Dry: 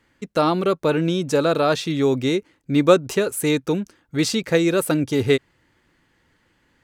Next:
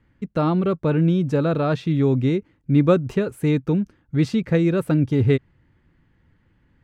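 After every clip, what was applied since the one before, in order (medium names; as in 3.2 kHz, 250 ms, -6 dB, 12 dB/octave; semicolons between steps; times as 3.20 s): tone controls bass +14 dB, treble -14 dB; trim -5 dB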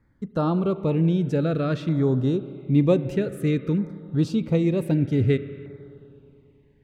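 spring tank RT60 2.8 s, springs 31/35 ms, chirp 60 ms, DRR 12.5 dB; LFO notch saw down 0.53 Hz 730–3000 Hz; trim -2.5 dB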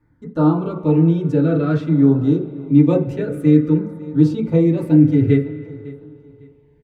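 feedback delay 554 ms, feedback 28%, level -20.5 dB; FDN reverb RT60 0.33 s, low-frequency decay 1.05×, high-frequency decay 0.25×, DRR -5.5 dB; trim -4 dB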